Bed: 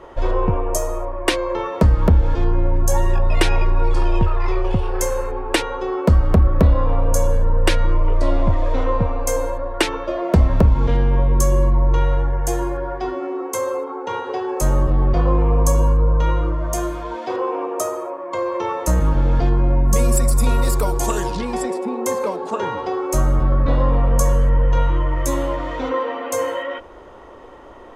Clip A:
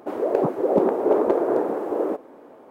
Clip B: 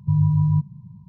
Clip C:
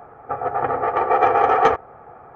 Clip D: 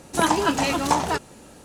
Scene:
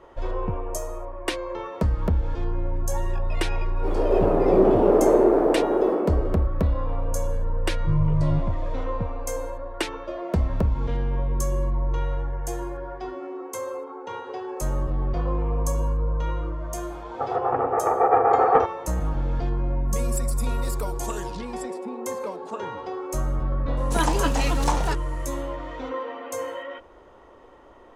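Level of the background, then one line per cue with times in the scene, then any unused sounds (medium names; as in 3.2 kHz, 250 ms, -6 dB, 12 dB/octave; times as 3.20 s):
bed -9 dB
3.76 s: add A -11.5 dB + simulated room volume 44 m³, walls hard, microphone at 1.2 m
7.79 s: add B -4.5 dB
16.90 s: add C -1 dB + low-pass 1.2 kHz
23.77 s: add D -4 dB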